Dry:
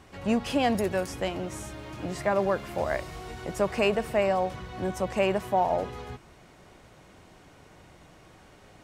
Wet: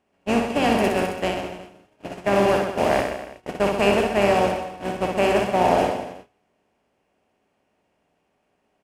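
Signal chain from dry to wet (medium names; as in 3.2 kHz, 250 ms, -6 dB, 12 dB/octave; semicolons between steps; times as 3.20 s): spectral levelling over time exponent 0.4; gate -20 dBFS, range -42 dB; reverse bouncing-ball echo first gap 60 ms, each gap 1.1×, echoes 5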